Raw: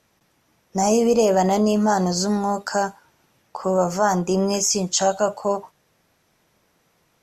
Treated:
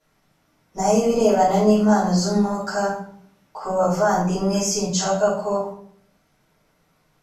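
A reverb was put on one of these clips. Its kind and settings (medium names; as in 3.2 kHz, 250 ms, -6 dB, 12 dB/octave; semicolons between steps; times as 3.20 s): simulated room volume 86 m³, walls mixed, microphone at 3 m; trim -12.5 dB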